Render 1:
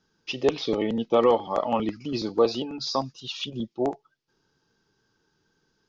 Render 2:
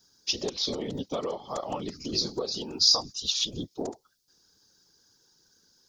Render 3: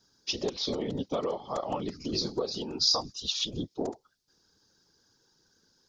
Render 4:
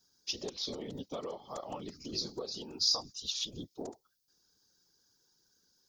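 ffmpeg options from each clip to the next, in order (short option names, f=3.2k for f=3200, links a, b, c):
-af "afftfilt=real='hypot(re,im)*cos(2*PI*random(0))':imag='hypot(re,im)*sin(2*PI*random(1))':win_size=512:overlap=0.75,acompressor=threshold=-33dB:ratio=6,aexciter=amount=6.3:drive=6.4:freq=3.9k,volume=3.5dB"
-af "lowpass=f=3.1k:p=1,volume=1dB"
-af "aemphasis=mode=production:type=50fm,volume=-9dB"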